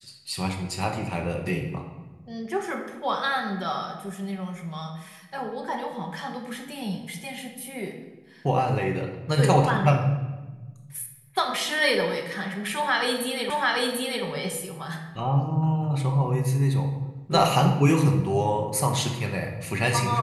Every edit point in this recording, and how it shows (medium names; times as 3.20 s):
13.50 s: repeat of the last 0.74 s